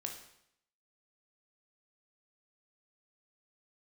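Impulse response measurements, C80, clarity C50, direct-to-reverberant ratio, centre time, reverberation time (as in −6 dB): 10.0 dB, 6.5 dB, 2.0 dB, 25 ms, 0.75 s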